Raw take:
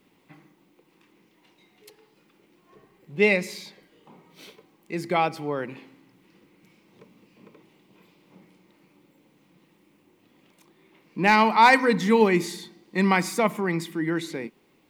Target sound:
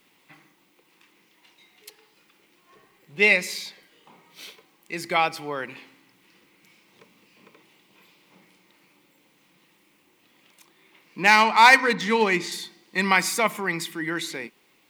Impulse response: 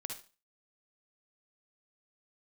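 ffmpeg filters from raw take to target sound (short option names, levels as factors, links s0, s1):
-filter_complex "[0:a]asettb=1/sr,asplit=3[s0][s1][s2];[s0]atrim=end=11.234[s3];[s1]atrim=start=11.23:end=12.52,asetpts=PTS-STARTPTS,afade=t=in:d=0.004:c=qsin,afade=t=out:st=1.286:d=0.004:c=qsin,adynamicsmooth=sensitivity=3.5:basefreq=4300[s4];[s2]atrim=start=12.516[s5];[s3][s4]acrossfade=d=0.004:c1=hsin:c2=qsin[s6];[s6][s5]acrossfade=d=0.004:c1=qsin:c2=hsin,tiltshelf=f=790:g=-7"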